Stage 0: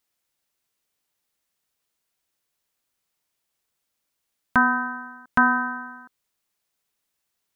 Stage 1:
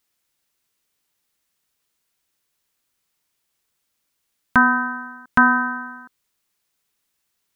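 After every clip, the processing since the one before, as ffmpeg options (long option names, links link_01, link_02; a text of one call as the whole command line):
ffmpeg -i in.wav -af "equalizer=frequency=660:width_type=o:width=0.92:gain=-3.5,volume=4.5dB" out.wav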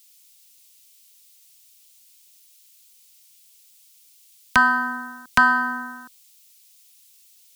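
ffmpeg -i in.wav -filter_complex "[0:a]acrossover=split=120|600[link_01][link_02][link_03];[link_02]acompressor=threshold=-31dB:ratio=6[link_04];[link_01][link_04][link_03]amix=inputs=3:normalize=0,aexciter=amount=3.2:drive=9.5:freq=2300" out.wav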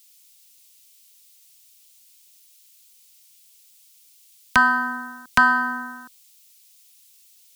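ffmpeg -i in.wav -af anull out.wav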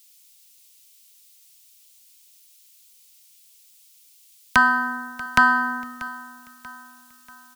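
ffmpeg -i in.wav -af "aecho=1:1:637|1274|1911|2548:0.126|0.0554|0.0244|0.0107" out.wav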